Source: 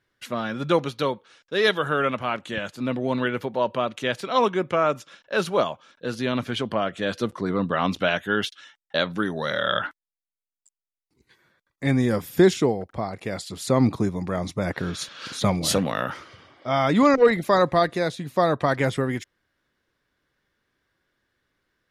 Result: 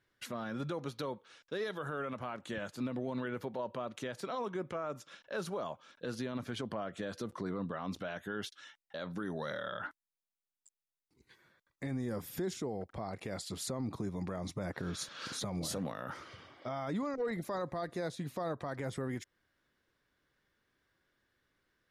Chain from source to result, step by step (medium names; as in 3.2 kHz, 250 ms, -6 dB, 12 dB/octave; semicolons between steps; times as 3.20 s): dynamic bell 2.8 kHz, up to -8 dB, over -43 dBFS, Q 1.3; compression 1.5:1, threshold -35 dBFS, peak gain reduction 8.5 dB; peak limiter -24.5 dBFS, peak gain reduction 10 dB; trim -4 dB